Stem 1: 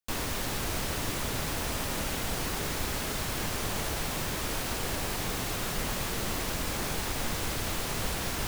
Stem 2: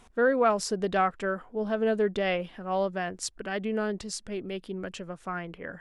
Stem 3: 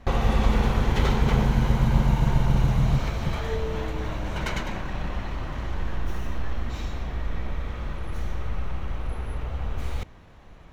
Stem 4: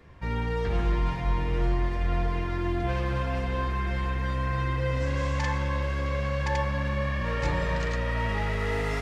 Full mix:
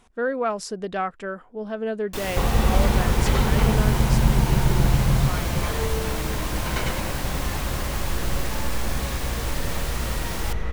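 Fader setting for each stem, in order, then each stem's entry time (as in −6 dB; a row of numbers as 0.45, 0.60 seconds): +0.5, −1.5, +1.5, −8.5 decibels; 2.05, 0.00, 2.30, 2.05 seconds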